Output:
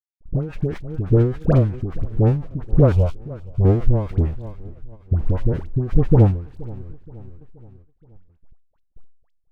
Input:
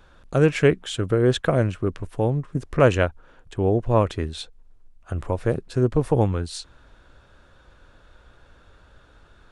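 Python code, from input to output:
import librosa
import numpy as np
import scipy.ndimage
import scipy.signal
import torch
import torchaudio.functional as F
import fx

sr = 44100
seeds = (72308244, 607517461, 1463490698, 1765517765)

p1 = fx.tilt_eq(x, sr, slope=-4.0)
p2 = fx.backlash(p1, sr, play_db=-18.5)
p3 = fx.dispersion(p2, sr, late='highs', ms=80.0, hz=1100.0)
p4 = fx.fixed_phaser(p3, sr, hz=710.0, stages=4, at=(2.92, 3.65))
p5 = p4 + fx.echo_feedback(p4, sr, ms=475, feedback_pct=50, wet_db=-21.0, dry=0)
p6 = fx.end_taper(p5, sr, db_per_s=110.0)
y = p6 * 10.0 ** (-2.0 / 20.0)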